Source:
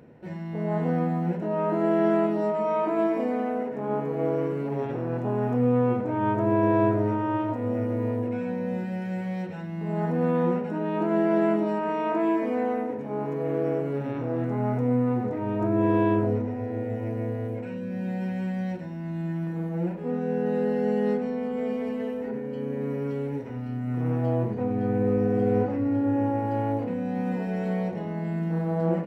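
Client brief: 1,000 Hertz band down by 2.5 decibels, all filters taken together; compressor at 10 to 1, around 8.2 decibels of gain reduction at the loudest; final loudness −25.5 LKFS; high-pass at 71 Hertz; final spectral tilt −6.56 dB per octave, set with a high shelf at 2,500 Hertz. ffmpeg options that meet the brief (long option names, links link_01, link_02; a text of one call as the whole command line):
ffmpeg -i in.wav -af "highpass=71,equalizer=frequency=1000:width_type=o:gain=-4,highshelf=frequency=2500:gain=6,acompressor=threshold=-27dB:ratio=10,volume=6.5dB" out.wav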